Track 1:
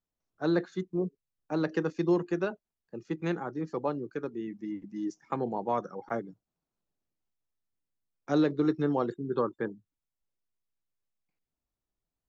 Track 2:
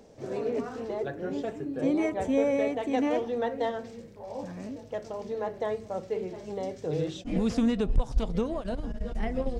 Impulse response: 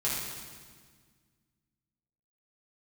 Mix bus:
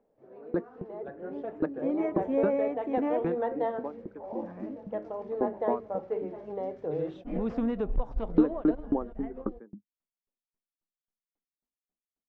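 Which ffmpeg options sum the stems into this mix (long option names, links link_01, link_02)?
-filter_complex "[0:a]lowshelf=frequency=160:width_type=q:width=3:gain=-9,aeval=exprs='val(0)*pow(10,-39*if(lt(mod(3.7*n/s,1),2*abs(3.7)/1000),1-mod(3.7*n/s,1)/(2*abs(3.7)/1000),(mod(3.7*n/s,1)-2*abs(3.7)/1000)/(1-2*abs(3.7)/1000))/20)':channel_layout=same,volume=0.5dB[link_01];[1:a]equalizer=frequency=87:width=0.52:gain=-12.5,dynaudnorm=framelen=110:gausssize=17:maxgain=12.5dB,volume=-15dB[link_02];[link_01][link_02]amix=inputs=2:normalize=0,lowpass=1300,dynaudnorm=framelen=380:gausssize=9:maxgain=4dB"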